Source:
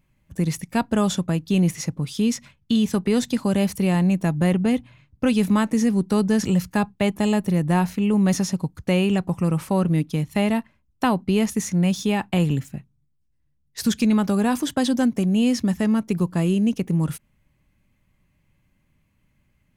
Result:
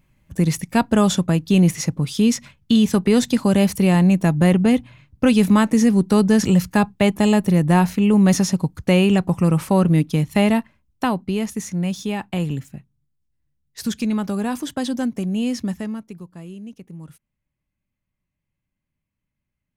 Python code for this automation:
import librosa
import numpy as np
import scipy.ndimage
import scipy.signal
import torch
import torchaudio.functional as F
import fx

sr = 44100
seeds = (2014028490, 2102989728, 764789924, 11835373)

y = fx.gain(x, sr, db=fx.line((10.49, 4.5), (11.39, -3.0), (15.69, -3.0), (16.24, -16.0)))